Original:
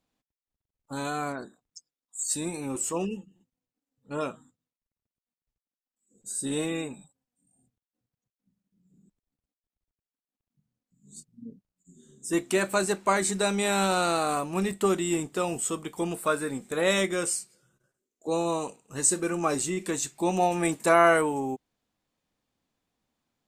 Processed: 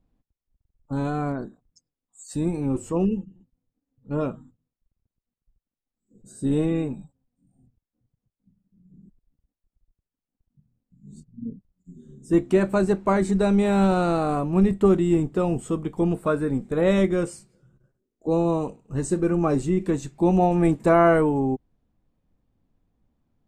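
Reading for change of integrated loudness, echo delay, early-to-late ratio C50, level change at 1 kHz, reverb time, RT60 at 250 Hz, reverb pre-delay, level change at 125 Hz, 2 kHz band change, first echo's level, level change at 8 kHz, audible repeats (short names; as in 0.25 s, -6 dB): +4.0 dB, none, none, +0.5 dB, none, none, none, +11.5 dB, -3.5 dB, none, -13.5 dB, none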